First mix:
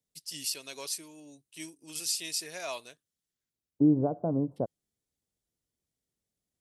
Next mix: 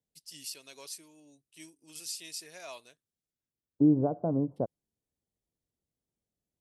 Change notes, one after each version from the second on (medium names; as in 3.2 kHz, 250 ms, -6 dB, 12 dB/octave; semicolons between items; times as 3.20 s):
first voice -7.5 dB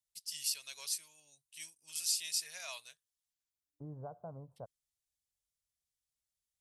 first voice +6.5 dB; master: add amplifier tone stack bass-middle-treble 10-0-10